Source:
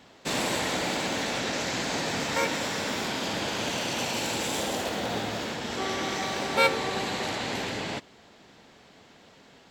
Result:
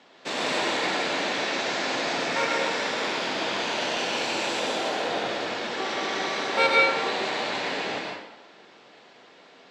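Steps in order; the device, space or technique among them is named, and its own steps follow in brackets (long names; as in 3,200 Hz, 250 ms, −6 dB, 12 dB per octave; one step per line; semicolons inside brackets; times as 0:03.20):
supermarket ceiling speaker (band-pass filter 300–5,200 Hz; convolution reverb RT60 0.95 s, pre-delay 109 ms, DRR −1.5 dB)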